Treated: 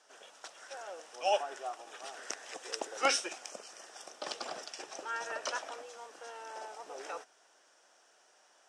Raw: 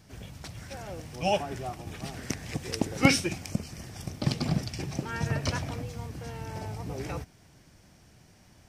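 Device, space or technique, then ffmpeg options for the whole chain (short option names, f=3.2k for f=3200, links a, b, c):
phone speaker on a table: -af "highpass=f=470:w=0.5412,highpass=f=470:w=1.3066,equalizer=f=1.4k:t=q:w=4:g=4,equalizer=f=2.2k:t=q:w=4:g=-9,equalizer=f=4.4k:t=q:w=4:g=-7,lowpass=f=8.7k:w=0.5412,lowpass=f=8.7k:w=1.3066,lowshelf=f=440:g=-3,volume=-1dB"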